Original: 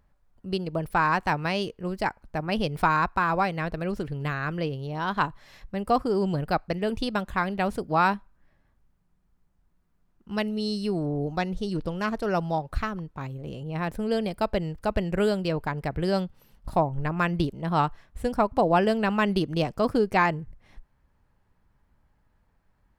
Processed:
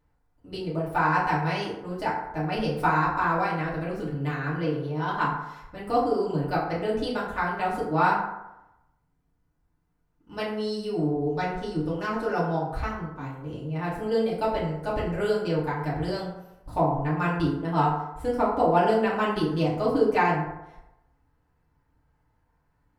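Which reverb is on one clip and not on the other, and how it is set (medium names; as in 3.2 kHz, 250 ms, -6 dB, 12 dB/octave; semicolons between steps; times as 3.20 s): FDN reverb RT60 0.92 s, low-frequency decay 0.8×, high-frequency decay 0.45×, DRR -8.5 dB; trim -9.5 dB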